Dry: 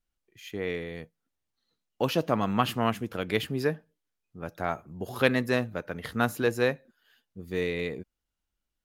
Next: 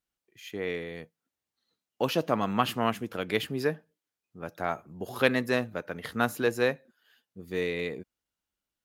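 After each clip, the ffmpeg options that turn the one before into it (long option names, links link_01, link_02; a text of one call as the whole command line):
ffmpeg -i in.wav -af "highpass=frequency=160:poles=1" out.wav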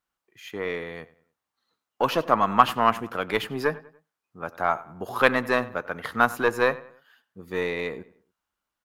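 ffmpeg -i in.wav -filter_complex "[0:a]aeval=exprs='0.398*(cos(1*acos(clip(val(0)/0.398,-1,1)))-cos(1*PI/2))+0.0178*(cos(6*acos(clip(val(0)/0.398,-1,1)))-cos(6*PI/2))':channel_layout=same,equalizer=frequency=1100:width=0.98:gain=11.5,asplit=2[link_01][link_02];[link_02]adelay=96,lowpass=frequency=3300:poles=1,volume=-18.5dB,asplit=2[link_03][link_04];[link_04]adelay=96,lowpass=frequency=3300:poles=1,volume=0.4,asplit=2[link_05][link_06];[link_06]adelay=96,lowpass=frequency=3300:poles=1,volume=0.4[link_07];[link_01][link_03][link_05][link_07]amix=inputs=4:normalize=0" out.wav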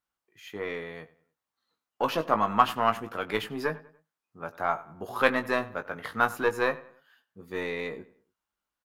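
ffmpeg -i in.wav -filter_complex "[0:a]asplit=2[link_01][link_02];[link_02]adelay=19,volume=-8dB[link_03];[link_01][link_03]amix=inputs=2:normalize=0,volume=-4.5dB" out.wav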